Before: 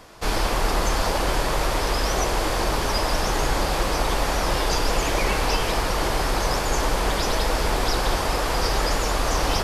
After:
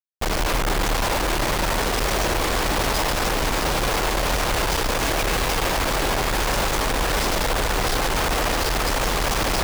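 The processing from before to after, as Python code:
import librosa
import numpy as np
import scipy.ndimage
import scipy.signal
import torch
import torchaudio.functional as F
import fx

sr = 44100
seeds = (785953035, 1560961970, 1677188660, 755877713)

y = fx.schmitt(x, sr, flips_db=-33.0)
y = fx.echo_split(y, sr, split_hz=570.0, low_ms=140, high_ms=608, feedback_pct=52, wet_db=-9.5)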